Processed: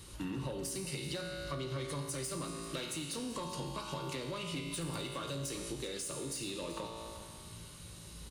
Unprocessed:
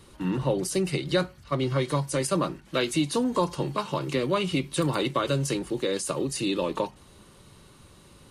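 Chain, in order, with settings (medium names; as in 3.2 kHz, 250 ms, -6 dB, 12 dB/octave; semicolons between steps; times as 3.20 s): treble shelf 2.5 kHz +11.5 dB; hum notches 60/120/180 Hz; feedback comb 56 Hz, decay 1.2 s, harmonics all, mix 80%; saturation -29 dBFS, distortion -14 dB; compression 12:1, threshold -44 dBFS, peak gain reduction 12.5 dB; peaking EQ 63 Hz +10.5 dB 2.3 oct; delay 385 ms -15 dB; on a send at -13 dB: reverberation RT60 1.7 s, pre-delay 24 ms; on the sum: trim +5.5 dB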